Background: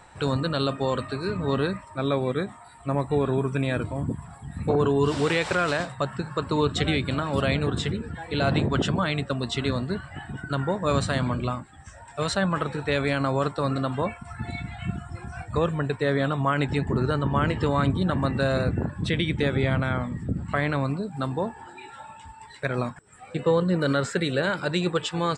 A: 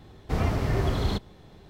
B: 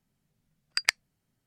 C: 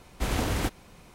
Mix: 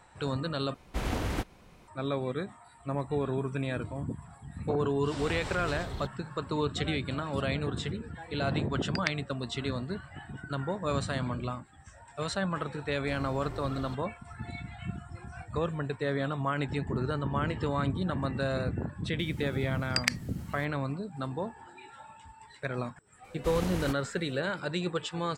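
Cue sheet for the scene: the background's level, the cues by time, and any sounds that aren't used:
background -7 dB
0.74 replace with C -3.5 dB + high shelf 4900 Hz -7.5 dB
4.89 add A -12.5 dB
8.18 add B -5 dB + air absorption 140 m
12.77 add A -16 dB
19.19 add B -3.5 dB + fast leveller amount 50%
23.24 add C -7.5 dB

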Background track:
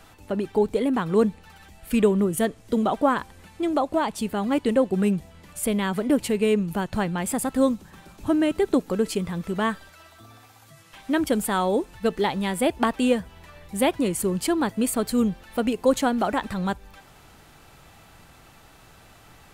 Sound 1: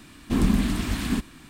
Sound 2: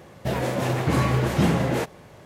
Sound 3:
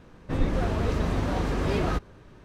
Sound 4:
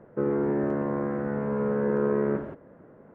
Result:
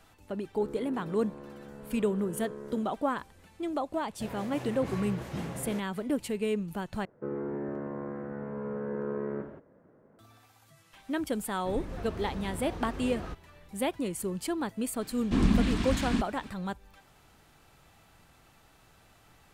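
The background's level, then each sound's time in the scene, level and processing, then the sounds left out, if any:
background track -9 dB
0.42 add 4 -17.5 dB
3.95 add 2 -16 dB
7.05 replace with 4 -9 dB
11.36 add 3 -13 dB
15.01 add 1 -3 dB + LPF 6400 Hz

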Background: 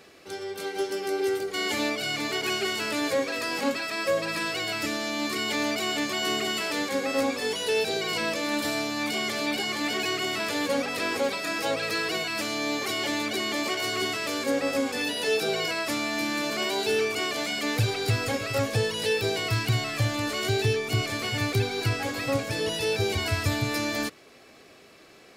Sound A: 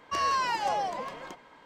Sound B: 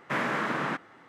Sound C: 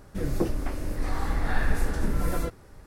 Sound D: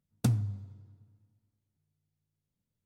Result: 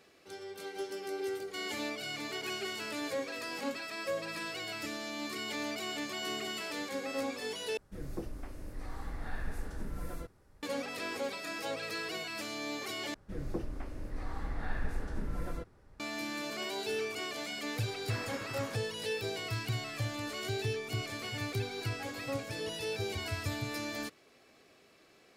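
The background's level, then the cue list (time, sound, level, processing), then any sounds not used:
background -10 dB
7.77 replace with C -13.5 dB
13.14 replace with C -10.5 dB + high shelf 7200 Hz -11 dB
17.99 add B -17 dB
not used: A, D

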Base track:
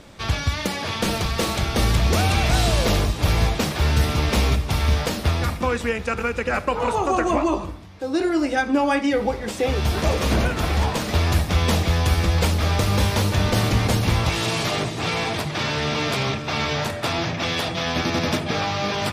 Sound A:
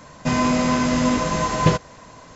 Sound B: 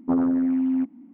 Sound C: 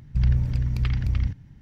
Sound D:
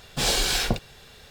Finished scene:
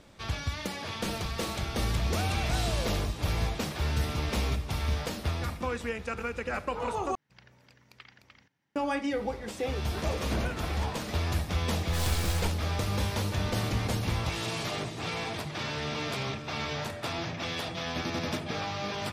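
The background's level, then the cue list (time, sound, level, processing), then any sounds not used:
base track -10 dB
7.15 replace with C -12 dB + HPF 560 Hz
11.75 add D -9.5 dB + full-wave rectifier
not used: A, B

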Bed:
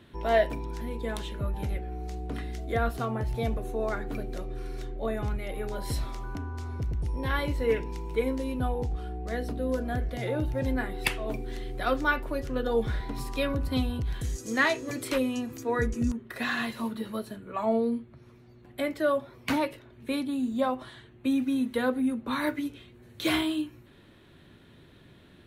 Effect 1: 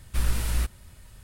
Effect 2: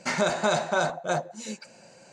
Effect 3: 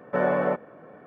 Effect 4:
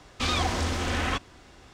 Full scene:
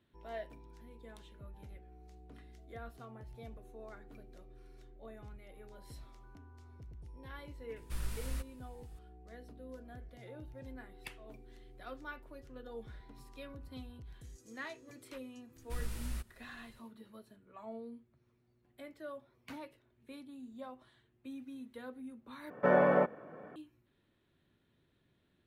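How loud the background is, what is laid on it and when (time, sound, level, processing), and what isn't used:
bed -20 dB
7.76 add 1 -13.5 dB
15.56 add 1 -14.5 dB
22.5 replace with 3 -3 dB
not used: 2, 4

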